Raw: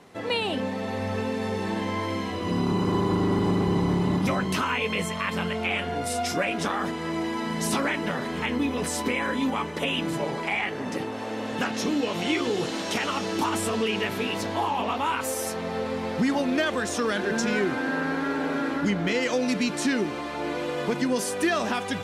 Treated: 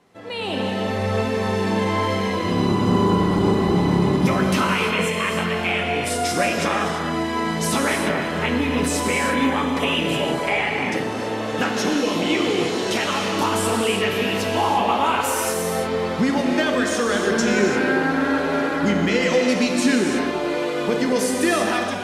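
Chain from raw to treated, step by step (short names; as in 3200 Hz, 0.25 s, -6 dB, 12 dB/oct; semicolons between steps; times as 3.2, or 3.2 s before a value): AGC gain up to 14 dB; non-linear reverb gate 0.37 s flat, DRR 1 dB; gain -8 dB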